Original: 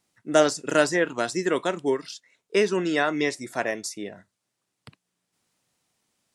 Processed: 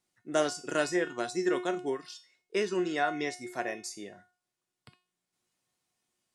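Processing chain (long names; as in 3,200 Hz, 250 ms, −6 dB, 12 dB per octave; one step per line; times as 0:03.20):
tuned comb filter 360 Hz, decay 0.38 s, harmonics all, mix 80%
level +4 dB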